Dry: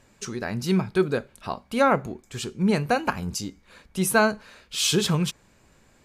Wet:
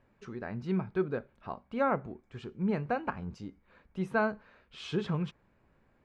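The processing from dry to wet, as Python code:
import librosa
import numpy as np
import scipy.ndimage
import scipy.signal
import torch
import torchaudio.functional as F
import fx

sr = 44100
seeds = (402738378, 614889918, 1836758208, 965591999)

y = scipy.signal.sosfilt(scipy.signal.butter(2, 1900.0, 'lowpass', fs=sr, output='sos'), x)
y = y * librosa.db_to_amplitude(-8.5)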